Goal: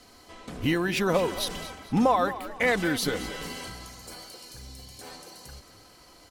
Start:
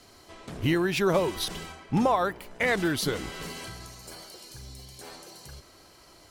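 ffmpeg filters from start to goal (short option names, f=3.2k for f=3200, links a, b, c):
-filter_complex "[0:a]aecho=1:1:4:0.37,asplit=2[a][b];[b]asplit=3[c][d][e];[c]adelay=221,afreqshift=38,volume=-14.5dB[f];[d]adelay=442,afreqshift=76,volume=-23.1dB[g];[e]adelay=663,afreqshift=114,volume=-31.8dB[h];[f][g][h]amix=inputs=3:normalize=0[i];[a][i]amix=inputs=2:normalize=0"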